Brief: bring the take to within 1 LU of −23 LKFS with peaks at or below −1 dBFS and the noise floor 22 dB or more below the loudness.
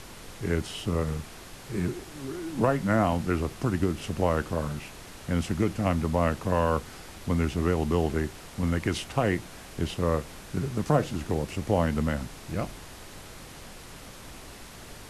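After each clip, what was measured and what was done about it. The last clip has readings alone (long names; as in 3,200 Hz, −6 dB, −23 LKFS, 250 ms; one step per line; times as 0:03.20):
background noise floor −45 dBFS; target noise floor −51 dBFS; integrated loudness −28.5 LKFS; sample peak −9.5 dBFS; target loudness −23.0 LKFS
→ noise reduction from a noise print 6 dB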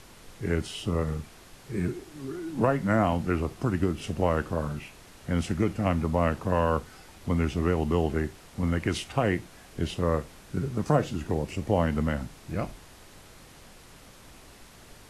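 background noise floor −51 dBFS; integrated loudness −29.0 LKFS; sample peak −9.5 dBFS; target loudness −23.0 LKFS
→ level +6 dB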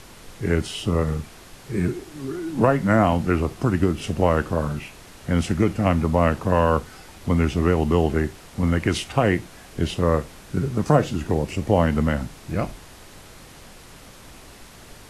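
integrated loudness −23.0 LKFS; sample peak −3.5 dBFS; background noise floor −45 dBFS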